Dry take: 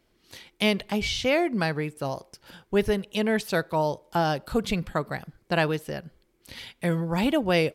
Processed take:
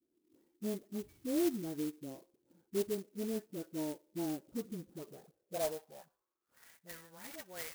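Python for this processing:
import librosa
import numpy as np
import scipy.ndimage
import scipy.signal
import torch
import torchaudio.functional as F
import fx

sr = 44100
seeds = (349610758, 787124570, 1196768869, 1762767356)

y = fx.high_shelf(x, sr, hz=3200.0, db=-8.5)
y = fx.dispersion(y, sr, late='highs', ms=65.0, hz=770.0)
y = fx.hpss(y, sr, part='percussive', gain_db=-8)
y = fx.filter_sweep_bandpass(y, sr, from_hz=310.0, to_hz=1900.0, start_s=4.87, end_s=6.87, q=4.6)
y = fx.clock_jitter(y, sr, seeds[0], jitter_ms=0.096)
y = F.gain(torch.from_numpy(y), -1.5).numpy()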